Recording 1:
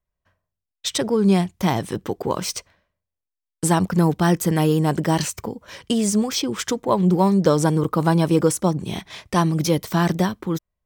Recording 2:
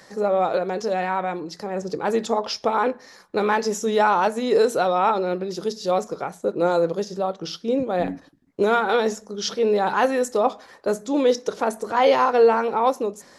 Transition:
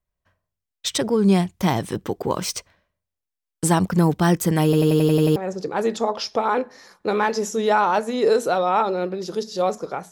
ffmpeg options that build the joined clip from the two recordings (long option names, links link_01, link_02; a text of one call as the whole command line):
ffmpeg -i cue0.wav -i cue1.wav -filter_complex "[0:a]apad=whole_dur=10.11,atrim=end=10.11,asplit=8[link_01][link_02][link_03][link_04][link_05][link_06][link_07][link_08];[link_01]atrim=end=4.732[link_09];[link_02]atrim=start=4.638:end=4.732[link_10];[link_03]atrim=start=4.638:end=4.732[link_11];[link_04]atrim=start=4.638:end=4.732[link_12];[link_05]atrim=start=4.638:end=4.732[link_13];[link_06]atrim=start=4.638:end=4.732[link_14];[link_07]atrim=start=4.638:end=4.732[link_15];[link_08]atrim=start=4.638:end=4.732[link_16];[1:a]atrim=start=1.648:end=6.4[link_17];[link_09][link_10]acrossfade=duration=0.004:curve1=hsin:curve2=hsin[link_18];[link_18][link_11]acrossfade=duration=0.004:curve1=hsin:curve2=hsin[link_19];[link_19][link_12]acrossfade=duration=0.004:curve1=hsin:curve2=hsin[link_20];[link_20][link_13]acrossfade=duration=0.004:curve1=hsin:curve2=hsin[link_21];[link_21][link_14]acrossfade=duration=0.004:curve1=hsin:curve2=hsin[link_22];[link_22][link_15]acrossfade=duration=0.004:curve1=hsin:curve2=hsin[link_23];[link_23][link_16]acrossfade=duration=0.004:curve1=hsin:curve2=hsin[link_24];[link_24][link_17]acrossfade=duration=0.004:curve1=hsin:curve2=hsin" out.wav